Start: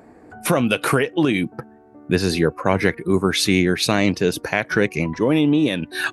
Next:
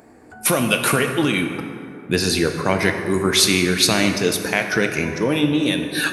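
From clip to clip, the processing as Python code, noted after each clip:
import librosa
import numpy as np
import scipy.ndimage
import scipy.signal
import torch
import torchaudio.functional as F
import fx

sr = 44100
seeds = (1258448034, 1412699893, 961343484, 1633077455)

y = fx.high_shelf(x, sr, hz=2800.0, db=10.5)
y = fx.rev_plate(y, sr, seeds[0], rt60_s=2.5, hf_ratio=0.5, predelay_ms=0, drr_db=4.5)
y = y * librosa.db_to_amplitude(-2.5)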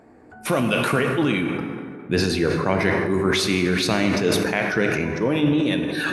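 y = fx.lowpass(x, sr, hz=2100.0, slope=6)
y = fx.sustainer(y, sr, db_per_s=27.0)
y = y * librosa.db_to_amplitude(-2.0)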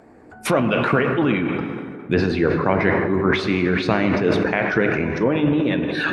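y = fx.env_lowpass_down(x, sr, base_hz=2200.0, full_db=-18.0)
y = fx.hpss(y, sr, part='percussive', gain_db=5)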